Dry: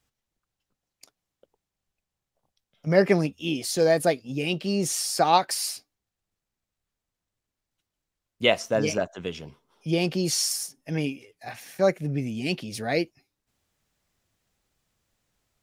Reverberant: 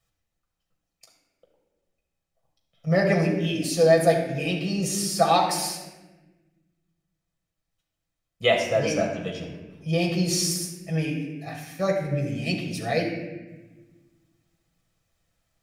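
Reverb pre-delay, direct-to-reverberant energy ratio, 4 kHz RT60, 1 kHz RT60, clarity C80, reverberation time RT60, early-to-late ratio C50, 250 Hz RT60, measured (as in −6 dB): 6 ms, −0.5 dB, 0.85 s, 1.0 s, 7.0 dB, 1.2 s, 5.0 dB, 1.9 s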